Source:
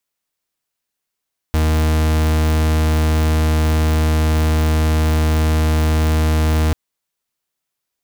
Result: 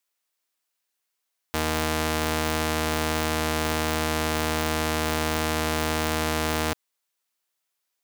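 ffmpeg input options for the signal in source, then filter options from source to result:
-f lavfi -i "aevalsrc='0.178*(2*lt(mod(78.2*t,1),0.42)-1)':duration=5.19:sample_rate=44100"
-af "highpass=frequency=590:poles=1"

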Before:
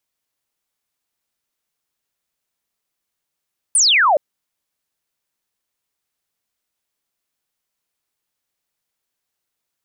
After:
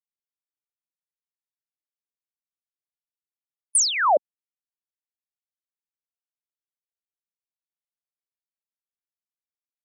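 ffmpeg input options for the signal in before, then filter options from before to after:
-f lavfi -i "aevalsrc='0.299*clip(t/0.002,0,1)*clip((0.42-t)/0.002,0,1)*sin(2*PI*10000*0.42/log(540/10000)*(exp(log(540/10000)*t/0.42)-1))':duration=0.42:sample_rate=44100"
-af "equalizer=frequency=2800:width=0.65:gain=-14,afftfilt=real='re*gte(hypot(re,im),0.0447)':imag='im*gte(hypot(re,im),0.0447)':win_size=1024:overlap=0.75"

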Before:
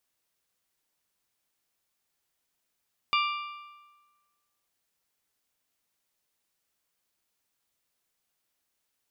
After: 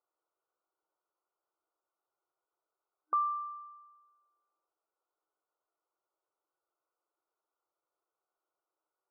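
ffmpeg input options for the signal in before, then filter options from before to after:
-f lavfi -i "aevalsrc='0.0708*pow(10,-3*t/1.35)*sin(2*PI*1180*t)+0.0501*pow(10,-3*t/1.097)*sin(2*PI*2360*t)+0.0355*pow(10,-3*t/1.038)*sin(2*PI*2832*t)+0.0251*pow(10,-3*t/0.971)*sin(2*PI*3540*t)+0.0178*pow(10,-3*t/0.891)*sin(2*PI*4720*t)':duration=1.55:sample_rate=44100"
-af "afftfilt=real='re*between(b*sr/4096,310,1500)':imag='im*between(b*sr/4096,310,1500)':win_size=4096:overlap=0.75"

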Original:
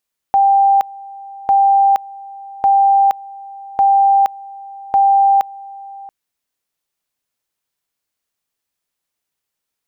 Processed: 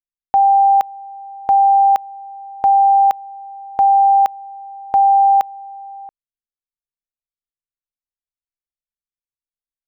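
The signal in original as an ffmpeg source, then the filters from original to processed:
-f lavfi -i "aevalsrc='pow(10,(-8-22*gte(mod(t,1.15),0.47))/20)*sin(2*PI*790*t)':duration=5.75:sample_rate=44100"
-af "anlmdn=0.631"

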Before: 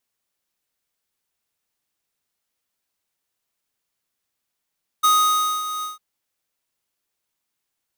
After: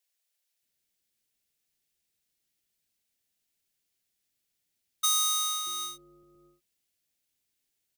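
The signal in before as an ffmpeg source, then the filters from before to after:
-f lavfi -i "aevalsrc='0.178*(2*lt(mod(1250*t,1),0.5)-1)':duration=0.952:sample_rate=44100,afade=type=in:duration=0.016,afade=type=out:start_time=0.016:duration=0.582:silence=0.237,afade=type=out:start_time=0.8:duration=0.152"
-filter_complex "[0:a]equalizer=frequency=1100:width_type=o:width=0.97:gain=-13.5,acrossover=split=4400[link_01][link_02];[link_01]acompressor=threshold=-31dB:ratio=6[link_03];[link_03][link_02]amix=inputs=2:normalize=0,acrossover=split=520[link_04][link_05];[link_04]adelay=630[link_06];[link_06][link_05]amix=inputs=2:normalize=0"

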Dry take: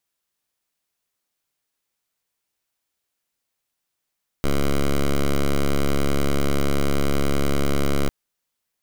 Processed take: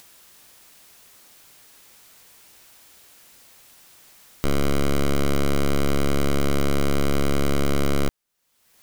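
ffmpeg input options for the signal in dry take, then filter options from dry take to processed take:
-f lavfi -i "aevalsrc='0.119*(2*lt(mod(70.4*t,1),0.08)-1)':duration=3.65:sample_rate=44100"
-af "acompressor=mode=upward:threshold=-28dB:ratio=2.5"

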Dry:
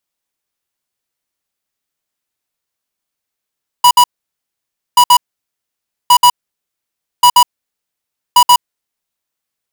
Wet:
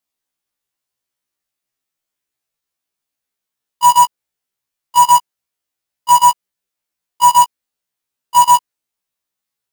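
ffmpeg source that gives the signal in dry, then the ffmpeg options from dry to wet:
-f lavfi -i "aevalsrc='0.531*(2*lt(mod(977*t,1),0.5)-1)*clip(min(mod(mod(t,1.13),0.13),0.07-mod(mod(t,1.13),0.13))/0.005,0,1)*lt(mod(t,1.13),0.26)':duration=5.65:sample_rate=44100"
-af "afftfilt=real='re*1.73*eq(mod(b,3),0)':imag='im*1.73*eq(mod(b,3),0)':win_size=2048:overlap=0.75"

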